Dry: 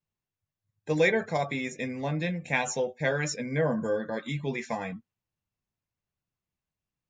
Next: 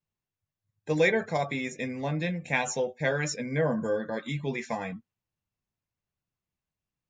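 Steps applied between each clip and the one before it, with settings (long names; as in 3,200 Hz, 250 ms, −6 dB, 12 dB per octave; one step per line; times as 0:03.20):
no processing that can be heard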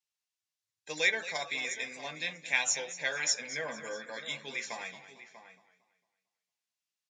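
resonant band-pass 5,300 Hz, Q 0.85
slap from a distant wall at 110 metres, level −12 dB
feedback echo with a swinging delay time 226 ms, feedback 38%, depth 87 cents, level −14 dB
level +6.5 dB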